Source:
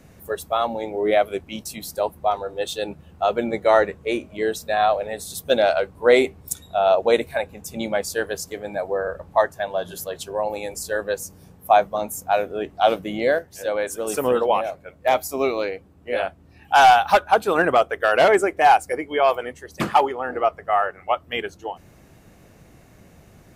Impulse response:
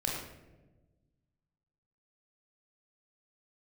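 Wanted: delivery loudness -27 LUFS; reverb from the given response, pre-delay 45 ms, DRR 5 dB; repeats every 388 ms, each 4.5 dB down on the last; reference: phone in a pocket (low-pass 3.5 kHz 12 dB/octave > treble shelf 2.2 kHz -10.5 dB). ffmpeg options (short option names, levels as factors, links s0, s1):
-filter_complex "[0:a]aecho=1:1:388|776|1164|1552|1940|2328|2716|3104|3492:0.596|0.357|0.214|0.129|0.0772|0.0463|0.0278|0.0167|0.01,asplit=2[s0][s1];[1:a]atrim=start_sample=2205,adelay=45[s2];[s1][s2]afir=irnorm=-1:irlink=0,volume=0.299[s3];[s0][s3]amix=inputs=2:normalize=0,lowpass=3500,highshelf=f=2200:g=-10.5,volume=0.422"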